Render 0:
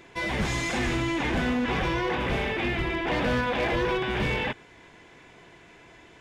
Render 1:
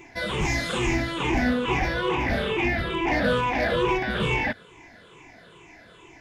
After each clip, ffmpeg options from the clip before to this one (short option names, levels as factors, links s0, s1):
-af "afftfilt=real='re*pow(10,14/40*sin(2*PI*(0.7*log(max(b,1)*sr/1024/100)/log(2)-(-2.3)*(pts-256)/sr)))':imag='im*pow(10,14/40*sin(2*PI*(0.7*log(max(b,1)*sr/1024/100)/log(2)-(-2.3)*(pts-256)/sr)))':win_size=1024:overlap=0.75"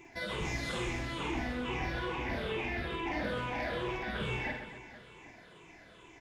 -filter_complex "[0:a]acompressor=threshold=0.0398:ratio=3,asplit=2[s0][s1];[s1]aecho=0:1:50|130|258|462.8|790.5:0.631|0.398|0.251|0.158|0.1[s2];[s0][s2]amix=inputs=2:normalize=0,volume=0.398"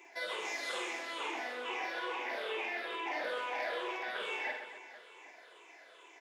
-af "highpass=f=430:w=0.5412,highpass=f=430:w=1.3066"